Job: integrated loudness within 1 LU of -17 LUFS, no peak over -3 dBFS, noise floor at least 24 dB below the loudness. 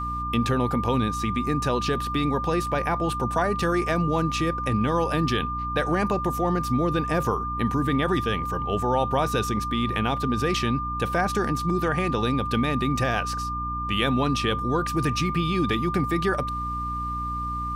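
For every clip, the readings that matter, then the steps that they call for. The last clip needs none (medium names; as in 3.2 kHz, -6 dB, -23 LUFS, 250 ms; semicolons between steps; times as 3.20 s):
hum 60 Hz; highest harmonic 300 Hz; hum level -31 dBFS; steady tone 1.2 kHz; tone level -28 dBFS; loudness -25.0 LUFS; peak level -8.5 dBFS; loudness target -17.0 LUFS
-> hum notches 60/120/180/240/300 Hz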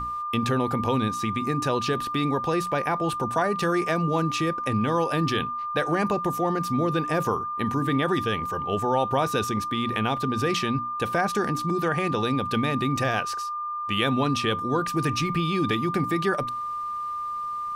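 hum not found; steady tone 1.2 kHz; tone level -28 dBFS
-> band-stop 1.2 kHz, Q 30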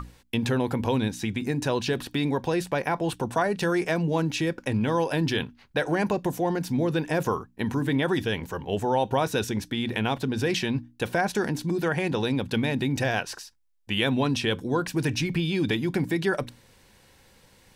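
steady tone not found; loudness -27.0 LUFS; peak level -10.0 dBFS; loudness target -17.0 LUFS
-> trim +10 dB; peak limiter -3 dBFS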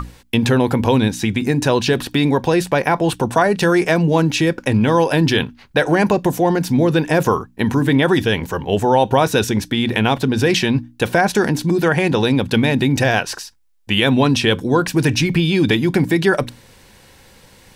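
loudness -17.0 LUFS; peak level -3.0 dBFS; noise floor -48 dBFS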